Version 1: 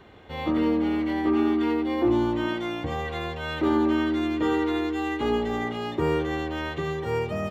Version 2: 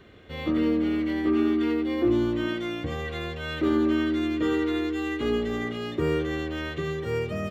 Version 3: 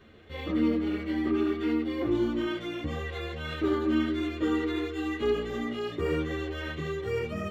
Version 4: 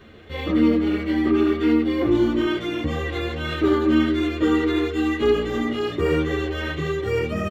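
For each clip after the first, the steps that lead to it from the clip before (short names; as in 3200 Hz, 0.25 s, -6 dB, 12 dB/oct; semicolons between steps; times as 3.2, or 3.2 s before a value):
bell 860 Hz -13.5 dB 0.48 oct
ensemble effect
outdoor echo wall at 180 m, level -15 dB; gain +8 dB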